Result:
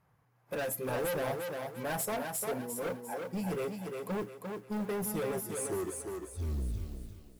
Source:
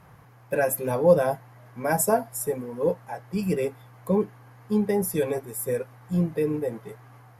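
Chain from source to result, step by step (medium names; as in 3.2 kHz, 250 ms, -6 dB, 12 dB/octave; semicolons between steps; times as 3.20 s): tape stop on the ending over 2.07 s; overload inside the chain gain 26.5 dB; spectral noise reduction 13 dB; modulation noise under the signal 28 dB; thinning echo 349 ms, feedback 37%, high-pass 170 Hz, level -4 dB; trim -5.5 dB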